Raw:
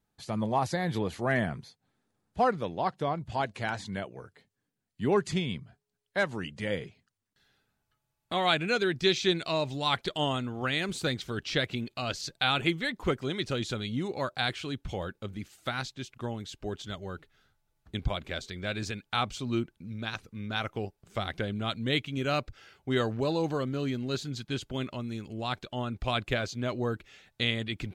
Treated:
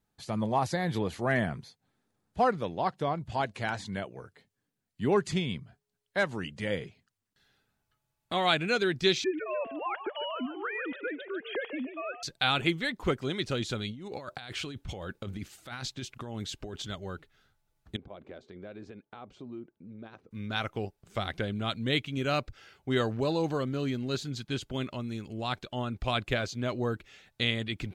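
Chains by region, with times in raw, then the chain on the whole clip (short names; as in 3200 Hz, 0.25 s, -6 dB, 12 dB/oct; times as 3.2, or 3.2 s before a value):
9.24–12.23 sine-wave speech + compressor 2:1, threshold -32 dBFS + frequency-shifting echo 0.146 s, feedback 37%, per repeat +64 Hz, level -10.5 dB
13.9–16.87 negative-ratio compressor -39 dBFS + mismatched tape noise reduction decoder only
17.96–20.31 compressor 5:1, threshold -35 dBFS + band-pass 420 Hz, Q 0.95
whole clip: dry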